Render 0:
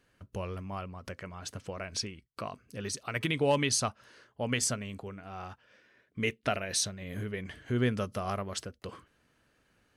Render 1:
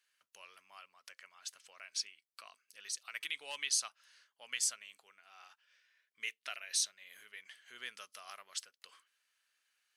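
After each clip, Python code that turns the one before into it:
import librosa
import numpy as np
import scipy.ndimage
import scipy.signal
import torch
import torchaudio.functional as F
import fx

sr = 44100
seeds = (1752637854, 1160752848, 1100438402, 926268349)

y = scipy.signal.sosfilt(scipy.signal.bessel(2, 2700.0, 'highpass', norm='mag', fs=sr, output='sos'), x)
y = y * 10.0 ** (-2.0 / 20.0)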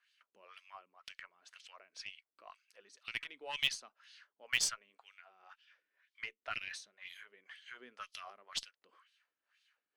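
y = fx.wah_lfo(x, sr, hz=2.0, low_hz=250.0, high_hz=3800.0, q=2.1)
y = fx.cheby_harmonics(y, sr, harmonics=(4, 6), levels_db=(-27, -23), full_scale_db=-26.0)
y = y * 10.0 ** (9.5 / 20.0)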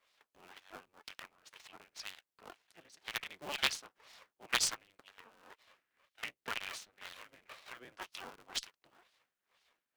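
y = fx.cycle_switch(x, sr, every=3, mode='inverted')
y = y * 10.0 ** (1.0 / 20.0)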